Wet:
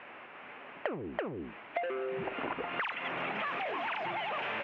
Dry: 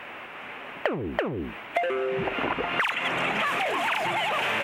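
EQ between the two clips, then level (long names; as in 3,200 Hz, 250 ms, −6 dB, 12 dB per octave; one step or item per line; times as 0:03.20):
low-pass filter 7,500 Hz 12 dB per octave
high-frequency loss of the air 260 metres
low-shelf EQ 85 Hz −12 dB
−7.0 dB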